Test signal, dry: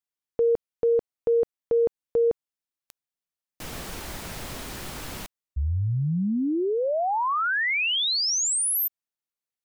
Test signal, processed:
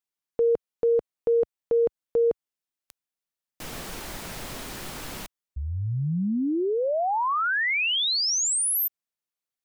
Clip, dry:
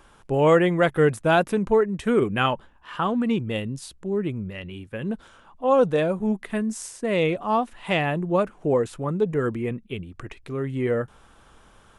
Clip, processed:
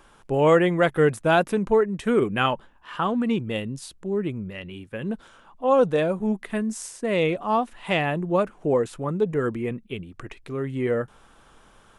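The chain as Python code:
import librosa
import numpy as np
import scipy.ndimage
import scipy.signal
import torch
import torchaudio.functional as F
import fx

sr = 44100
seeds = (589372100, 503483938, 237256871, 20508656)

y = fx.peak_eq(x, sr, hz=70.0, db=-5.5, octaves=1.3)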